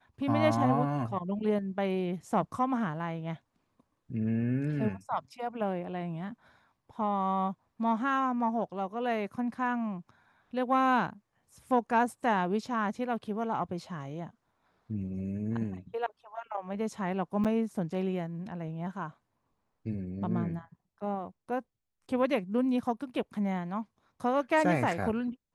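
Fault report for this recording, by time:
17.44–17.45 gap 7.5 ms

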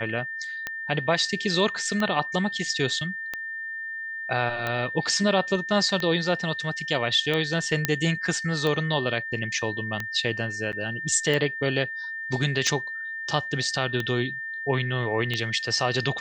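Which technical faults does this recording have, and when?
tick 45 rpm -14 dBFS
tone 1800 Hz -31 dBFS
7.85 pop -5 dBFS
10.72–10.73 gap 8.8 ms

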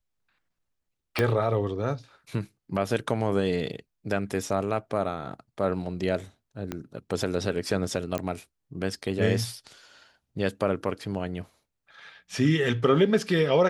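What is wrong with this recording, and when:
1.19 pop -10 dBFS
6.72 pop -16 dBFS
8.18 pop -15 dBFS

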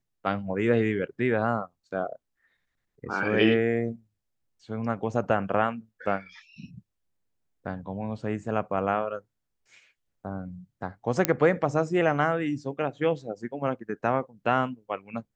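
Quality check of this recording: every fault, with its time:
11.25 pop -4 dBFS

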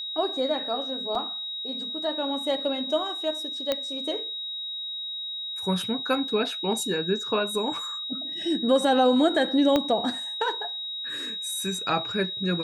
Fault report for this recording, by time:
tone 3800 Hz -31 dBFS
1.15 gap 3.1 ms
3.72 pop -11 dBFS
9.76 pop -10 dBFS

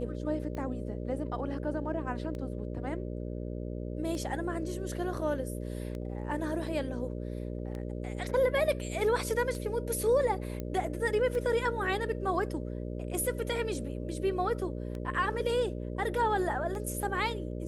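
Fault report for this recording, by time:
buzz 60 Hz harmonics 10 -37 dBFS
tick 33 1/3 rpm -27 dBFS
10.6 pop -23 dBFS

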